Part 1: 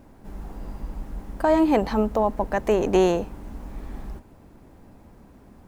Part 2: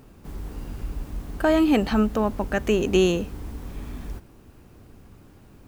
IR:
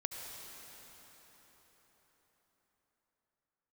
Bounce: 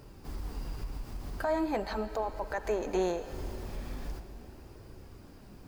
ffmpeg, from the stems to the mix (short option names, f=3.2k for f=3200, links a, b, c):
-filter_complex "[0:a]volume=-9dB,asplit=3[a][b][c];[b]volume=-8dB[d];[1:a]equalizer=f=4.9k:w=4.5:g=8.5,acompressor=threshold=-27dB:ratio=6,volume=-1,volume=-0.5dB,asplit=2[e][f];[f]volume=-8.5dB[g];[c]apad=whole_len=250219[h];[e][h]sidechaincompress=threshold=-40dB:ratio=8:attack=6.7:release=151[i];[2:a]atrim=start_sample=2205[j];[d][g]amix=inputs=2:normalize=0[k];[k][j]afir=irnorm=-1:irlink=0[l];[a][i][l]amix=inputs=3:normalize=0,flanger=delay=2:depth=6.6:regen=-56:speed=0.41:shape=sinusoidal"